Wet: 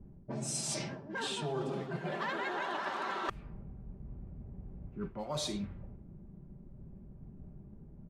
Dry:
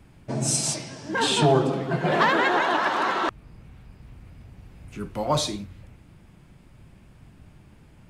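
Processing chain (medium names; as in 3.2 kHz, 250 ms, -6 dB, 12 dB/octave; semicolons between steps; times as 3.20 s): level-controlled noise filter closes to 350 Hz, open at -22.5 dBFS; comb 5.1 ms, depth 39%; reverse; compression 6:1, threshold -35 dBFS, peak gain reduction 19 dB; reverse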